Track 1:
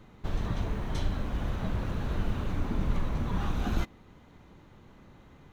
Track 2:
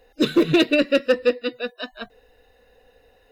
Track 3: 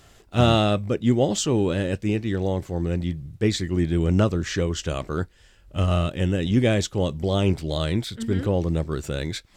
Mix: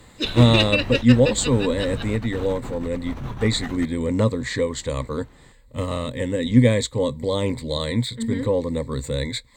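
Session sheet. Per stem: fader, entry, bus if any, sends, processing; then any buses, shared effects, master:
+1.5 dB, 0.00 s, no send, bass shelf 230 Hz -3.5 dB; compressor with a negative ratio -33 dBFS, ratio -0.5
-9.0 dB, 0.00 s, no send, frequency weighting D
-1.0 dB, 0.00 s, no send, rippled EQ curve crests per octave 1, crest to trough 16 dB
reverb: none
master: none

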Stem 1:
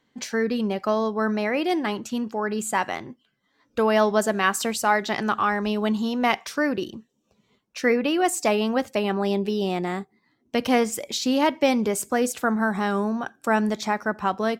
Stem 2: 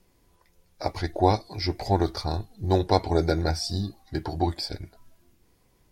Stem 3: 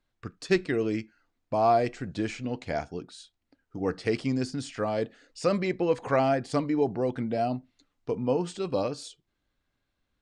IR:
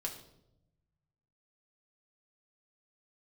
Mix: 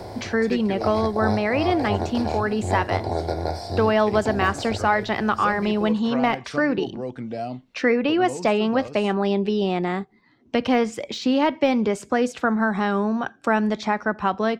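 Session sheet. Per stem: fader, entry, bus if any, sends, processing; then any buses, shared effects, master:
+1.5 dB, 0.00 s, no send, low-pass 4.3 kHz 12 dB/octave; de-esser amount 75%
-12.5 dB, 0.00 s, no send, spectral levelling over time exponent 0.4; fifteen-band graphic EQ 100 Hz +11 dB, 630 Hz +9 dB, 6.3 kHz -5 dB
-7.0 dB, 0.00 s, no send, none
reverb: none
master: three bands compressed up and down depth 40%

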